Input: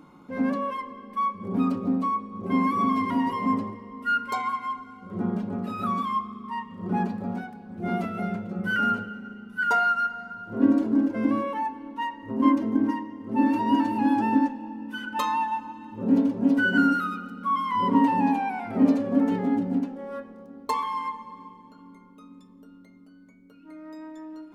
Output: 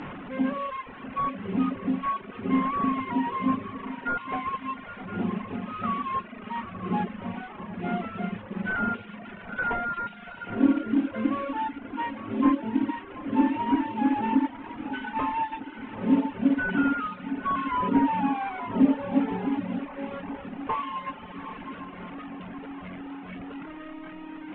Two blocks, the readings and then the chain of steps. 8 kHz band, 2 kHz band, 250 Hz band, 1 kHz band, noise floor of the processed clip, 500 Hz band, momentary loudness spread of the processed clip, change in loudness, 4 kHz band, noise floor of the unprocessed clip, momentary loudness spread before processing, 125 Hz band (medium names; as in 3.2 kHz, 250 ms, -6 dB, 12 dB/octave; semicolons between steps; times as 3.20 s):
no reading, -4.0 dB, -2.0 dB, -3.0 dB, -43 dBFS, -2.0 dB, 15 LU, -2.5 dB, -3.5 dB, -51 dBFS, 15 LU, -2.0 dB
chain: one-bit delta coder 16 kbps, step -30.5 dBFS; distance through air 150 m; echo that smears into a reverb 843 ms, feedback 45%, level -10.5 dB; reverb removal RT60 1.2 s